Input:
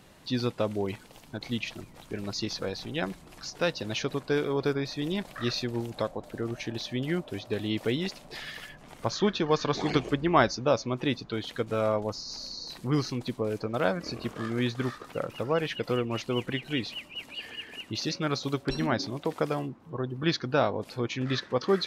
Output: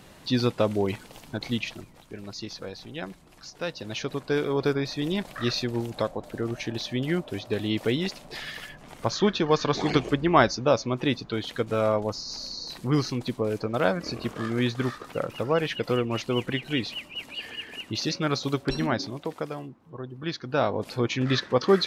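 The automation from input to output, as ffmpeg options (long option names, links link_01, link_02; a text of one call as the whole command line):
ffmpeg -i in.wav -af "volume=22.5dB,afade=type=out:start_time=1.38:duration=0.67:silence=0.334965,afade=type=in:start_time=3.64:duration=0.99:silence=0.421697,afade=type=out:start_time=18.66:duration=0.84:silence=0.398107,afade=type=in:start_time=20.41:duration=0.47:silence=0.316228" out.wav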